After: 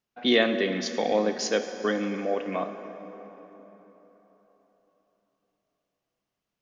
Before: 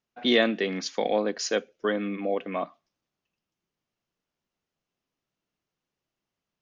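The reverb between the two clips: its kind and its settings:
dense smooth reverb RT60 4.1 s, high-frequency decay 0.6×, DRR 7.5 dB

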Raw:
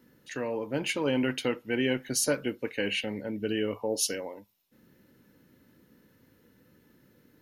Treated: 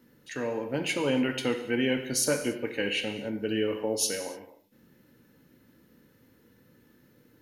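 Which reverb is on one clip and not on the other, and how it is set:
reverb whose tail is shaped and stops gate 320 ms falling, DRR 5.5 dB

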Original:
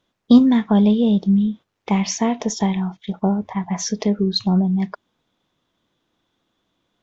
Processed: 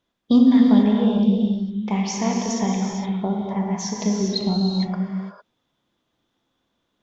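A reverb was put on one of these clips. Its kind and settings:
reverb whose tail is shaped and stops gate 480 ms flat, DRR −1 dB
level −5.5 dB

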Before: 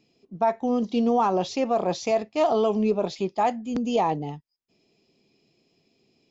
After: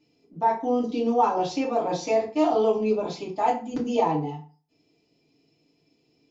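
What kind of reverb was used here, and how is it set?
feedback delay network reverb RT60 0.38 s, low-frequency decay 1.05×, high-frequency decay 0.75×, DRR −5.5 dB
level −7.5 dB

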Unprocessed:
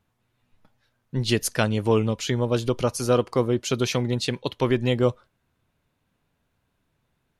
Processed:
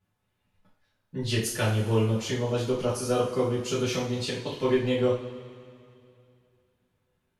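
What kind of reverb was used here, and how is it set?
coupled-rooms reverb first 0.4 s, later 2.6 s, from −18 dB, DRR −9 dB
level −13 dB

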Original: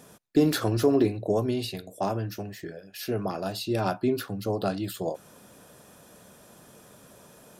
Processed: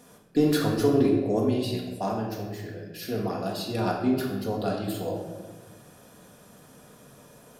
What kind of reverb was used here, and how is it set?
rectangular room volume 910 cubic metres, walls mixed, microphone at 1.8 metres
level −3.5 dB

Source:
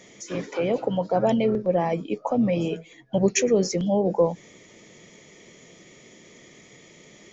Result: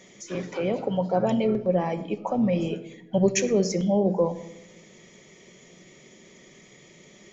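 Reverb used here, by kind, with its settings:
rectangular room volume 2,900 cubic metres, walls furnished, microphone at 1.1 metres
level −2.5 dB

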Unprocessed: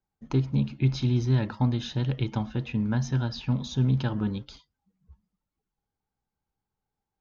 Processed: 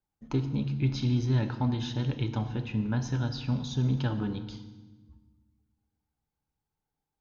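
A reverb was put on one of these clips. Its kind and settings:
feedback delay network reverb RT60 1.2 s, low-frequency decay 1.6×, high-frequency decay 0.9×, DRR 7.5 dB
level −2.5 dB

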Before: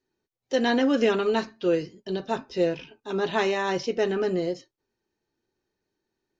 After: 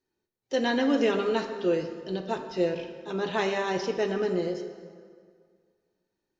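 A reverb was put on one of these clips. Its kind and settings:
dense smooth reverb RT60 2 s, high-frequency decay 0.7×, DRR 6.5 dB
level −3 dB

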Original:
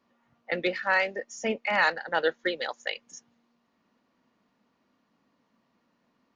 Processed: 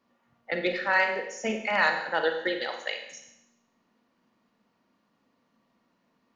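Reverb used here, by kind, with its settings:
four-comb reverb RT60 0.83 s, combs from 33 ms, DRR 4.5 dB
level −1 dB

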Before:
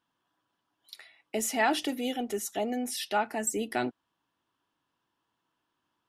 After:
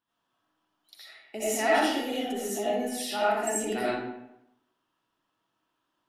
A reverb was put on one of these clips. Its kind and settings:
comb and all-pass reverb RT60 0.85 s, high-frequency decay 0.7×, pre-delay 40 ms, DRR −9 dB
level −7 dB

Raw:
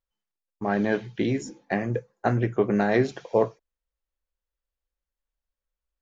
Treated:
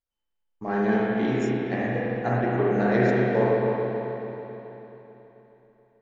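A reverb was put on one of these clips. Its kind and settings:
spring reverb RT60 3.6 s, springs 32/54 ms, chirp 75 ms, DRR −7 dB
level −5.5 dB

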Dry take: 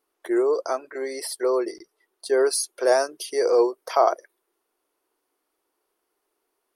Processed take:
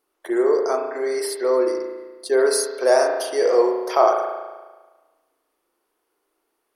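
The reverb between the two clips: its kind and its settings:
spring reverb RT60 1.3 s, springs 35 ms, chirp 40 ms, DRR 2 dB
level +1.5 dB

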